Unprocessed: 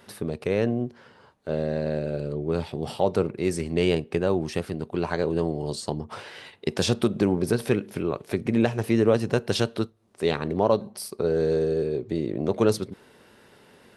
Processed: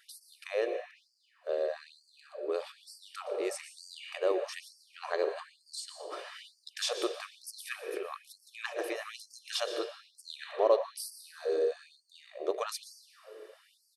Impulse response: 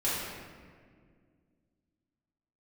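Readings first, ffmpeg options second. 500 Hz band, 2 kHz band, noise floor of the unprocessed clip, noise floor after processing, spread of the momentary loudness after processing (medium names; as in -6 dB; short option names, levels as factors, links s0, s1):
-8.5 dB, -6.5 dB, -55 dBFS, -70 dBFS, 19 LU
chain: -filter_complex "[0:a]aecho=1:1:1.7:0.46,asplit=2[s0][s1];[1:a]atrim=start_sample=2205,adelay=116[s2];[s1][s2]afir=irnorm=-1:irlink=0,volume=0.158[s3];[s0][s3]amix=inputs=2:normalize=0,afftfilt=real='re*gte(b*sr/1024,300*pow(4400/300,0.5+0.5*sin(2*PI*1.1*pts/sr)))':imag='im*gte(b*sr/1024,300*pow(4400/300,0.5+0.5*sin(2*PI*1.1*pts/sr)))':win_size=1024:overlap=0.75,volume=0.531"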